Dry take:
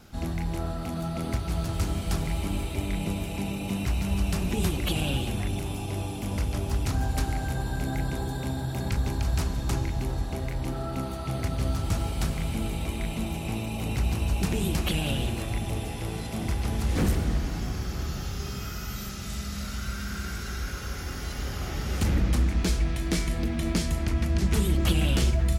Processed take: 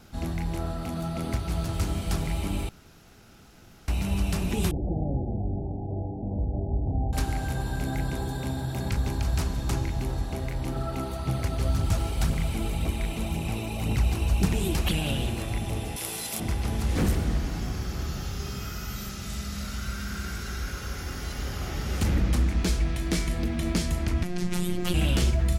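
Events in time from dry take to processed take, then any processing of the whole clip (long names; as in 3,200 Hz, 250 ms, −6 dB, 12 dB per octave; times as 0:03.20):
0:02.69–0:03.88: fill with room tone
0:04.71–0:07.13: Butterworth low-pass 820 Hz 72 dB per octave
0:10.76–0:14.94: phase shifter 1.9 Hz, delay 3.1 ms, feedback 36%
0:15.96–0:16.40: RIAA equalisation recording
0:24.23–0:24.94: phases set to zero 178 Hz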